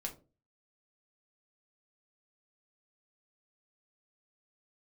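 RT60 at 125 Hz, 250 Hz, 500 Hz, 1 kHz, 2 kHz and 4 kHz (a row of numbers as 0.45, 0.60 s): 0.50, 0.45, 0.40, 0.25, 0.20, 0.20 s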